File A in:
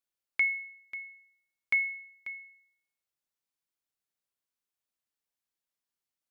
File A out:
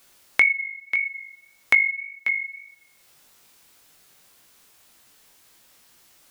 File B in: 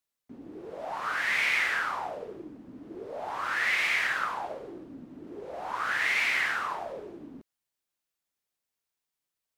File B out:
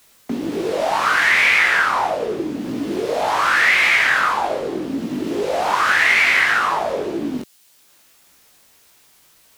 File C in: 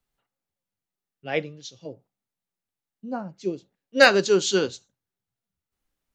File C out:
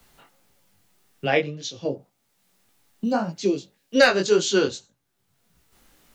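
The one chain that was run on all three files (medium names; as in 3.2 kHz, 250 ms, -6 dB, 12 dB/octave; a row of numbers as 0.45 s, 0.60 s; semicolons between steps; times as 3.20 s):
chorus 1.8 Hz, delay 17.5 ms, depth 4.3 ms; three bands compressed up and down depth 70%; peak normalisation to -3 dBFS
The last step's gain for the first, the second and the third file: +16.5 dB, +16.0 dB, +7.0 dB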